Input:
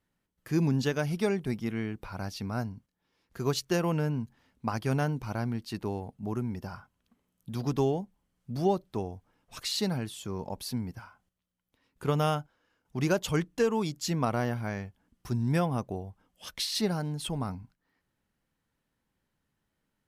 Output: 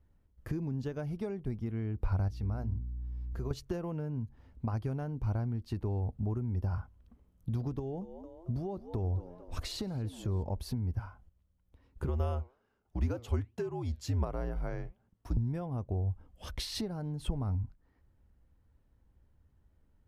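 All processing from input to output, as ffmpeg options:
-filter_complex "[0:a]asettb=1/sr,asplit=3[a][b][c];[a]atrim=end=2.284[d];[b]atrim=start=2.28:end=3.51,asetpts=PTS-STARTPTS,afade=t=in:d=0.004:c=qsin,afade=t=out:st=1.226:d=0.004:c=qsin,bandreject=f=60:t=h:w=6,bandreject=f=120:t=h:w=6,bandreject=f=180:t=h:w=6,bandreject=f=240:t=h:w=6,bandreject=f=300:t=h:w=6,bandreject=f=360:t=h:w=6,bandreject=f=420:t=h:w=6,acompressor=threshold=-49dB:ratio=2:attack=3.2:release=140:knee=1:detection=peak,aeval=exprs='val(0)+0.00141*(sin(2*PI*60*n/s)+sin(2*PI*2*60*n/s)/2+sin(2*PI*3*60*n/s)/3+sin(2*PI*4*60*n/s)/4+sin(2*PI*5*60*n/s)/5)':c=same[e];[c]atrim=start=3.506[f];[d][e]acrossfade=d=0.004:c1=hsin:c2=qsin[g];[g][f]acrossfade=d=0.004:c1=qsin:c2=hsin,asettb=1/sr,asplit=3[h][i][j];[h]atrim=end=7.794[k];[i]atrim=start=7.79:end=10.43,asetpts=PTS-STARTPTS,afade=t=in:d=0.004:c=qsin,afade=t=out:st=2.636:d=0.004:c=qsin,acompressor=threshold=-30dB:ratio=3:attack=3.2:release=140:knee=1:detection=peak,asplit=5[l][m][n][o][p];[m]adelay=223,afreqshift=82,volume=-18dB[q];[n]adelay=446,afreqshift=164,volume=-24dB[r];[o]adelay=669,afreqshift=246,volume=-30dB[s];[p]adelay=892,afreqshift=328,volume=-36.1dB[t];[l][q][r][s][t]amix=inputs=5:normalize=0,atrim=end_sample=116424[u];[j]atrim=start=10.426[v];[k][u]acrossfade=d=0.004:c1=hsin:c2=qsin[w];[w][v]acrossfade=d=0.004:c1=qsin:c2=hsin,asettb=1/sr,asplit=3[x][y][z];[x]atrim=end=12.084[aa];[y]atrim=start=12.08:end=15.37,asetpts=PTS-STARTPTS,afade=t=in:d=0.004:c=qsin,afade=t=out:st=3.286:d=0.004:c=qsin,highpass=240,flanger=delay=1.8:depth=6.7:regen=-88:speed=1.3:shape=triangular,afreqshift=-68[ab];[z]atrim=start=15.366[ac];[aa][ab]acrossfade=d=0.004:c1=hsin:c2=qsin[ad];[ad][ac]acrossfade=d=0.004:c1=qsin:c2=hsin,tiltshelf=f=1.2k:g=8,acompressor=threshold=-33dB:ratio=6,lowshelf=f=110:t=q:w=1.5:g=11.5"

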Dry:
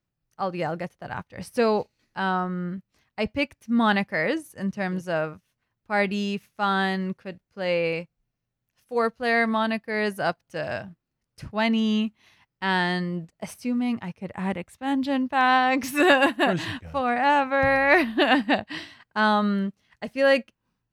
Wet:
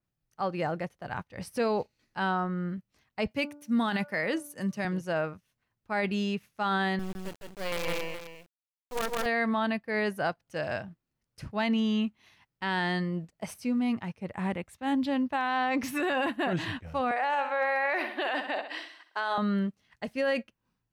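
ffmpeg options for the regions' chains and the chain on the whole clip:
-filter_complex "[0:a]asettb=1/sr,asplit=3[a][b][c];[a]atrim=end=3.314[d];[b]atrim=start=3.31:end=4.85,asetpts=PTS-STARTPTS,afade=t=in:d=0.004:c=qsin,afade=t=out:st=1.536:d=0.004:c=qsin,highpass=f=120:w=0.5412,highpass=f=120:w=1.3066,aemphasis=mode=production:type=cd,bandreject=f=291.8:t=h:w=4,bandreject=f=583.6:t=h:w=4,bandreject=f=875.4:t=h:w=4,bandreject=f=1.1672k:t=h:w=4,bandreject=f=1.459k:t=h:w=4[e];[c]atrim=start=4.846[f];[d][e]acrossfade=d=0.004:c1=hsin:c2=qsin[g];[g][f]acrossfade=d=0.004:c1=qsin:c2=hsin,asettb=1/sr,asplit=3[h][i][j];[h]atrim=end=6.994[k];[i]atrim=start=6.99:end=9.26,asetpts=PTS-STARTPTS,afade=t=in:d=0.004:c=qsin,afade=t=out:st=2.266:d=0.004:c=qsin,highpass=80,acrusher=bits=4:dc=4:mix=0:aa=0.000001,aecho=1:1:160|420:0.631|0.178,atrim=end_sample=100107[l];[j]atrim=start=9.256[m];[k][l]acrossfade=d=0.004:c1=hsin:c2=qsin[n];[n][m]acrossfade=d=0.004:c1=qsin:c2=hsin,asettb=1/sr,asplit=3[o][p][q];[o]atrim=end=17.114[r];[p]atrim=start=17.11:end=19.38,asetpts=PTS-STARTPTS,afade=t=in:d=0.004:c=qsin,afade=t=out:st=2.266:d=0.004:c=qsin,highpass=f=400:w=0.5412,highpass=f=400:w=1.3066,aecho=1:1:64|128|192|256|320:0.224|0.107|0.0516|0.0248|0.0119,atrim=end_sample=100107[s];[q]atrim=start=19.376[t];[r][s]acrossfade=d=0.004:c1=hsin:c2=qsin[u];[u][t]acrossfade=d=0.004:c1=qsin:c2=hsin,alimiter=limit=-17.5dB:level=0:latency=1:release=32,adynamicequalizer=threshold=0.00708:dfrequency=3900:dqfactor=0.7:tfrequency=3900:tqfactor=0.7:attack=5:release=100:ratio=0.375:range=3:mode=cutabove:tftype=highshelf,volume=-2.5dB"

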